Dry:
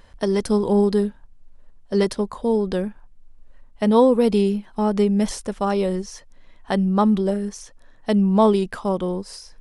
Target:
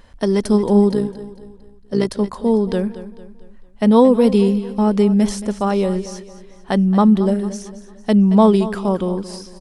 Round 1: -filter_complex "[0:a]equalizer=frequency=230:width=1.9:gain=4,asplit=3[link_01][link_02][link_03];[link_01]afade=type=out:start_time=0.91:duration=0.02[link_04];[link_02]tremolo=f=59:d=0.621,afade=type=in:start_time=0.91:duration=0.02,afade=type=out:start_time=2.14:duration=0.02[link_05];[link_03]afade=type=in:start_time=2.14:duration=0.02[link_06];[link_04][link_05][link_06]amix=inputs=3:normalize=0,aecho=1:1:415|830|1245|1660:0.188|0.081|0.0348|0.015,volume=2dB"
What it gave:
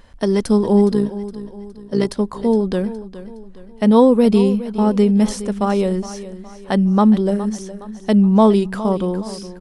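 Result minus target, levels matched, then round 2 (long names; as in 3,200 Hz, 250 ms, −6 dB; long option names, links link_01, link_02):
echo 190 ms late
-filter_complex "[0:a]equalizer=frequency=230:width=1.9:gain=4,asplit=3[link_01][link_02][link_03];[link_01]afade=type=out:start_time=0.91:duration=0.02[link_04];[link_02]tremolo=f=59:d=0.621,afade=type=in:start_time=0.91:duration=0.02,afade=type=out:start_time=2.14:duration=0.02[link_05];[link_03]afade=type=in:start_time=2.14:duration=0.02[link_06];[link_04][link_05][link_06]amix=inputs=3:normalize=0,aecho=1:1:225|450|675|900:0.188|0.081|0.0348|0.015,volume=2dB"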